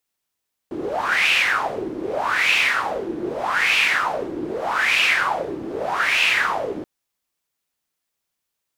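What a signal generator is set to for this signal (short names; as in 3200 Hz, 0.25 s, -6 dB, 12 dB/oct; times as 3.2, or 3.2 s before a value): wind-like swept noise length 6.13 s, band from 320 Hz, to 2600 Hz, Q 5.9, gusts 5, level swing 11 dB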